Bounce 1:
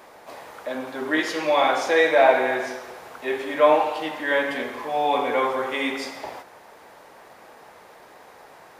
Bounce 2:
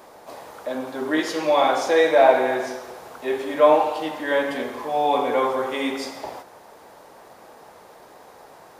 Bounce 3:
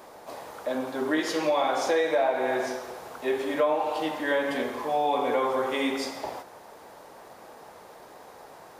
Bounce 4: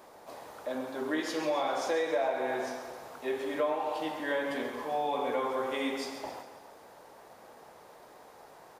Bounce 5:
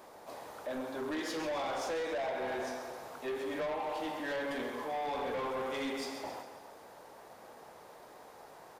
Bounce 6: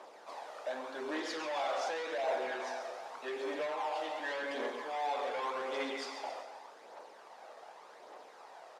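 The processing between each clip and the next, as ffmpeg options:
-af "equalizer=f=2100:t=o:w=1.4:g=-6.5,volume=1.33"
-af "acompressor=threshold=0.1:ratio=6,volume=0.891"
-af "aecho=1:1:135|270|405|540|675|810:0.282|0.147|0.0762|0.0396|0.0206|0.0107,volume=0.501"
-af "asoftclip=type=tanh:threshold=0.0251"
-filter_complex "[0:a]aphaser=in_gain=1:out_gain=1:delay=1.7:decay=0.39:speed=0.86:type=triangular,asplit=2[s0][s1];[s1]acrusher=samples=18:mix=1:aa=0.000001:lfo=1:lforange=10.8:lforate=2.1,volume=0.251[s2];[s0][s2]amix=inputs=2:normalize=0,highpass=490,lowpass=6300"

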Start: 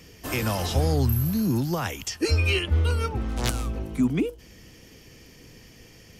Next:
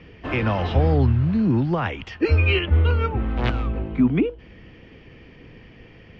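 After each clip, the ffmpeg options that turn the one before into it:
-af "lowpass=f=2900:w=0.5412,lowpass=f=2900:w=1.3066,volume=1.68"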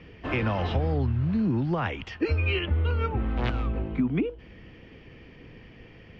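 -af "acompressor=threshold=0.112:ratio=6,volume=0.75"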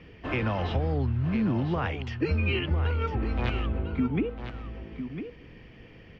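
-af "aecho=1:1:1003:0.355,volume=0.841"

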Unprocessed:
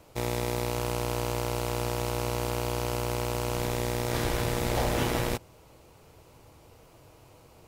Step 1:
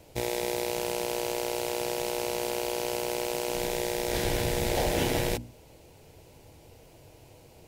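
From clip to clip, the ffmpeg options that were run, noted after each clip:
-af "equalizer=f=1200:w=2.8:g=-13,bandreject=f=60:t=h:w=6,bandreject=f=120:t=h:w=6,bandreject=f=180:t=h:w=6,bandreject=f=240:t=h:w=6,bandreject=f=300:t=h:w=6,volume=1.33"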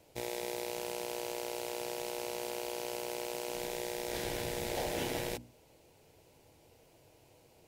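-af "lowshelf=f=130:g=-8.5,volume=0.422"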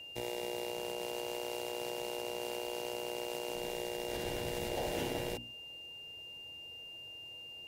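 -filter_complex "[0:a]acrossover=split=110|1000[s0][s1][s2];[s0]acrusher=samples=23:mix=1:aa=0.000001:lfo=1:lforange=23:lforate=0.29[s3];[s2]alimiter=level_in=2.51:limit=0.0631:level=0:latency=1:release=118,volume=0.398[s4];[s3][s1][s4]amix=inputs=3:normalize=0,aeval=exprs='val(0)+0.00501*sin(2*PI*2800*n/s)':c=same"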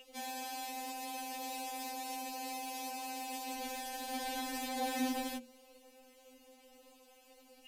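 -af "afftfilt=real='re*3.46*eq(mod(b,12),0)':imag='im*3.46*eq(mod(b,12),0)':win_size=2048:overlap=0.75,volume=1.78"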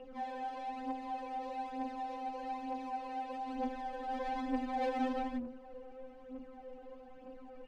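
-af "aeval=exprs='val(0)+0.5*0.00531*sgn(val(0))':c=same,adynamicsmooth=sensitivity=2.5:basefreq=720,aphaser=in_gain=1:out_gain=1:delay=2.6:decay=0.54:speed=1.1:type=triangular,volume=1.26"

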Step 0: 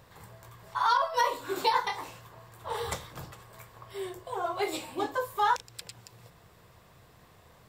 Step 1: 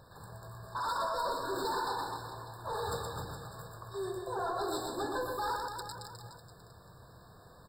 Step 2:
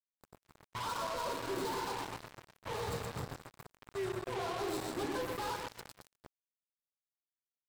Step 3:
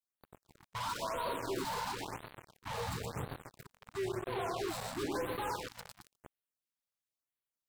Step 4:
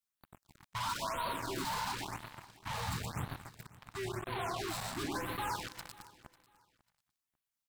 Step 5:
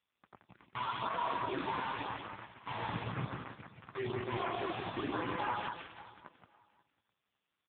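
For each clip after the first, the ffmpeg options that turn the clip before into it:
-filter_complex "[0:a]volume=44.7,asoftclip=hard,volume=0.0224,asplit=2[s0][s1];[s1]aecho=0:1:120|258|416.7|599.2|809.1:0.631|0.398|0.251|0.158|0.1[s2];[s0][s2]amix=inputs=2:normalize=0,afftfilt=real='re*eq(mod(floor(b*sr/1024/1800),2),0)':imag='im*eq(mod(floor(b*sr/1024/1800),2),0)':win_size=1024:overlap=0.75"
-af "equalizer=f=180:t=o:w=2.7:g=10,acrusher=bits=4:mix=0:aa=0.5,asoftclip=type=tanh:threshold=0.0211,volume=1.12"
-af "afftfilt=real='re*(1-between(b*sr/1024,300*pow(6600/300,0.5+0.5*sin(2*PI*0.98*pts/sr))/1.41,300*pow(6600/300,0.5+0.5*sin(2*PI*0.98*pts/sr))*1.41))':imag='im*(1-between(b*sr/1024,300*pow(6600/300,0.5+0.5*sin(2*PI*0.98*pts/sr))/1.41,300*pow(6600/300,0.5+0.5*sin(2*PI*0.98*pts/sr))*1.41))':win_size=1024:overlap=0.75,volume=1.12"
-af "equalizer=f=470:w=1.9:g=-11.5,aecho=1:1:545|1090:0.0944|0.0236,volume=1.33"
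-af "highpass=90,aecho=1:1:91|174:0.158|0.562,volume=1.68" -ar 8000 -c:a libopencore_amrnb -b:a 5150

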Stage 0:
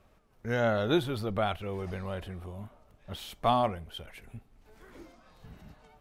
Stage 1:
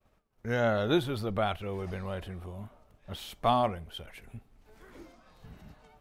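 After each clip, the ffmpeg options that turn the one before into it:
-af "agate=range=0.0224:threshold=0.00141:ratio=3:detection=peak"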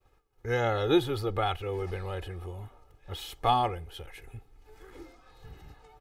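-af "aecho=1:1:2.4:0.77"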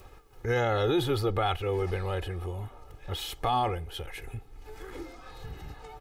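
-filter_complex "[0:a]asplit=2[s0][s1];[s1]acompressor=mode=upward:threshold=0.02:ratio=2.5,volume=0.891[s2];[s0][s2]amix=inputs=2:normalize=0,alimiter=limit=0.15:level=0:latency=1:release=24,volume=0.841"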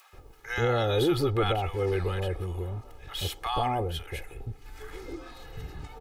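-filter_complex "[0:a]acrossover=split=860[s0][s1];[s0]adelay=130[s2];[s2][s1]amix=inputs=2:normalize=0,volume=1.26"

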